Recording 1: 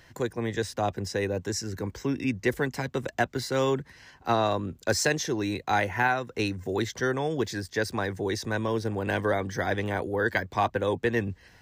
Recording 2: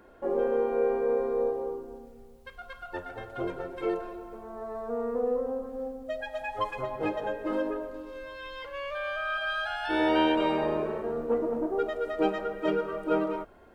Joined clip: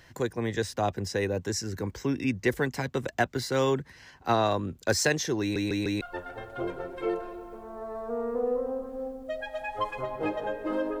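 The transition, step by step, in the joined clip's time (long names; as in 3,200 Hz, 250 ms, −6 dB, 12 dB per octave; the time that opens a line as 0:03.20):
recording 1
0:05.41: stutter in place 0.15 s, 4 plays
0:06.01: continue with recording 2 from 0:02.81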